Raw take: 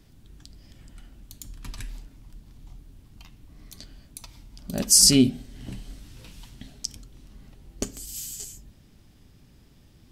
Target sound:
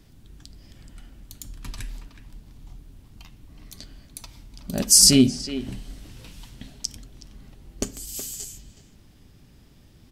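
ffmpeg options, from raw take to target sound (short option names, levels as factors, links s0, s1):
-filter_complex "[0:a]asplit=2[s0][s1];[s1]adelay=370,highpass=300,lowpass=3400,asoftclip=type=hard:threshold=0.237,volume=0.316[s2];[s0][s2]amix=inputs=2:normalize=0,volume=1.26"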